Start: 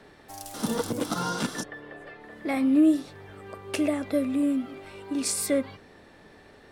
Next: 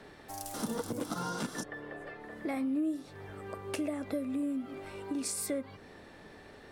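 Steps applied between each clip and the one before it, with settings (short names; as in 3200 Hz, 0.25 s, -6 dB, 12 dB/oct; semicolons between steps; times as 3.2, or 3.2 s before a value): compressor 3:1, threshold -34 dBFS, peak gain reduction 13 dB; dynamic EQ 3300 Hz, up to -4 dB, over -57 dBFS, Q 0.9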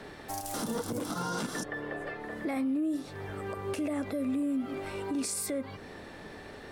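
limiter -31.5 dBFS, peak gain reduction 10 dB; gain +6.5 dB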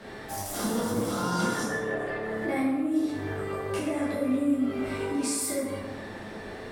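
plate-style reverb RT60 1.2 s, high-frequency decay 0.55×, DRR -8 dB; gain -3 dB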